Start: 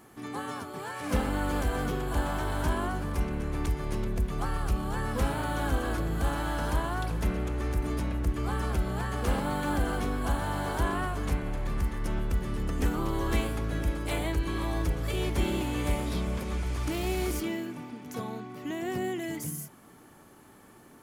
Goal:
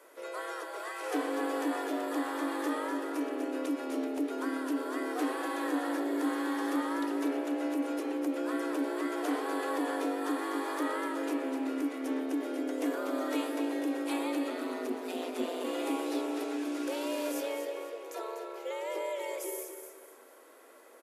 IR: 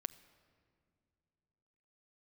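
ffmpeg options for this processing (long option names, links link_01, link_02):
-filter_complex "[0:a]asplit=2[link_01][link_02];[link_02]alimiter=level_in=2.5dB:limit=-24dB:level=0:latency=1,volume=-2.5dB,volume=-1dB[link_03];[link_01][link_03]amix=inputs=2:normalize=0,asplit=3[link_04][link_05][link_06];[link_04]afade=type=out:start_time=14.49:duration=0.02[link_07];[link_05]aeval=exprs='val(0)*sin(2*PI*87*n/s)':channel_layout=same,afade=type=in:start_time=14.49:duration=0.02,afade=type=out:start_time=15.63:duration=0.02[link_08];[link_06]afade=type=in:start_time=15.63:duration=0.02[link_09];[link_07][link_08][link_09]amix=inputs=3:normalize=0,afreqshift=230,aecho=1:1:246|492|738|984:0.398|0.135|0.046|0.0156,volume=-8dB" -ar 32000 -c:a libvorbis -b:a 64k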